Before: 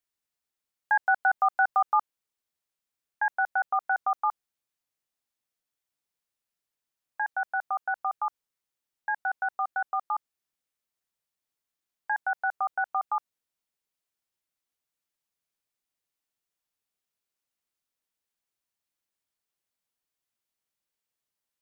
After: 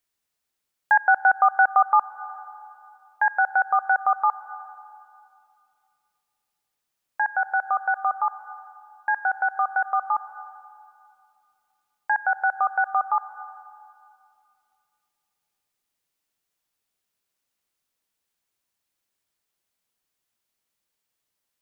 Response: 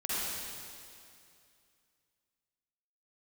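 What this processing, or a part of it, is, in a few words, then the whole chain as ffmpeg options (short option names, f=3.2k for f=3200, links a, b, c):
ducked reverb: -filter_complex "[0:a]asplit=3[a][b][c];[1:a]atrim=start_sample=2205[d];[b][d]afir=irnorm=-1:irlink=0[e];[c]apad=whole_len=953422[f];[e][f]sidechaincompress=threshold=-30dB:ratio=8:attack=45:release=429,volume=-17.5dB[g];[a][g]amix=inputs=2:normalize=0,volume=5.5dB"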